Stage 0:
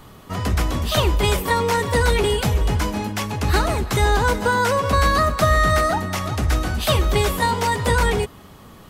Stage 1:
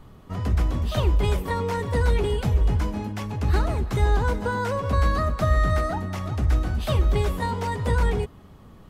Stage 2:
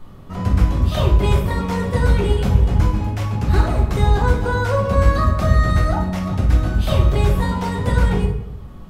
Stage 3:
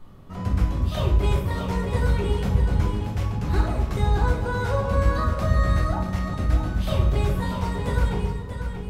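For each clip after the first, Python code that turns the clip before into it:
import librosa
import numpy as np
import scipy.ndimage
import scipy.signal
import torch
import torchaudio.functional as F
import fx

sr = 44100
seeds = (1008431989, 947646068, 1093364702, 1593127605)

y1 = fx.tilt_eq(x, sr, slope=-2.0)
y1 = y1 * 10.0 ** (-8.5 / 20.0)
y2 = fx.room_shoebox(y1, sr, seeds[0], volume_m3=130.0, walls='mixed', distance_m=0.94)
y2 = y2 * 10.0 ** (2.0 / 20.0)
y3 = y2 + 10.0 ** (-8.0 / 20.0) * np.pad(y2, (int(634 * sr / 1000.0), 0))[:len(y2)]
y3 = y3 * 10.0 ** (-6.5 / 20.0)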